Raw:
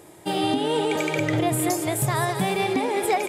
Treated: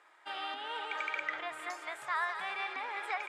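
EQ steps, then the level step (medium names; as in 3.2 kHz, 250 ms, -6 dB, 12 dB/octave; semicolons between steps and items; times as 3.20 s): ladder band-pass 1.6 kHz, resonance 45%; +4.5 dB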